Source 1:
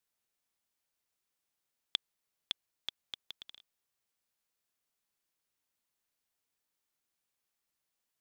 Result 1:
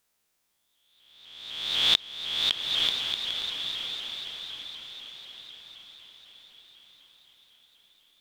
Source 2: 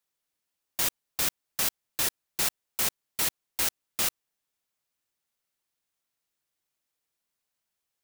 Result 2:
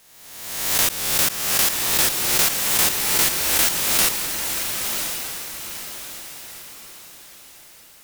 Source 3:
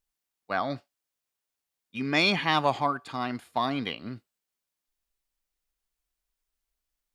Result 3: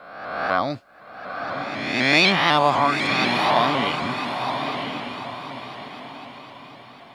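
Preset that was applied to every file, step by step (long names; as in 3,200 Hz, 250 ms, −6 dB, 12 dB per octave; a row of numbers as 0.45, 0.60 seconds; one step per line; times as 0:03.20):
peak hold with a rise ahead of every peak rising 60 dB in 1.27 s
feedback delay with all-pass diffusion 1,014 ms, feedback 41%, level −5 dB
pitch modulation by a square or saw wave saw up 4 Hz, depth 100 cents
normalise the peak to −3 dBFS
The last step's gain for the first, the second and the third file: +8.0, +5.5, +4.0 decibels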